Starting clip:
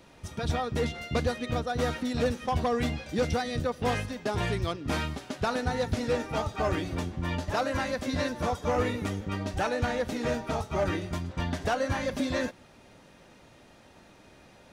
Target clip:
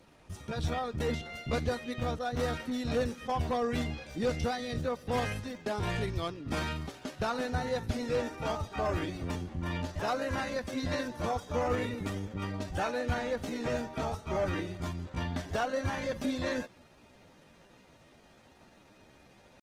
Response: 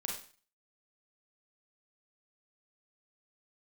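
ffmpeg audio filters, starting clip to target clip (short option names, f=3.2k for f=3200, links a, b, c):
-af "atempo=0.75,volume=-3.5dB" -ar 48000 -c:a libopus -b:a 20k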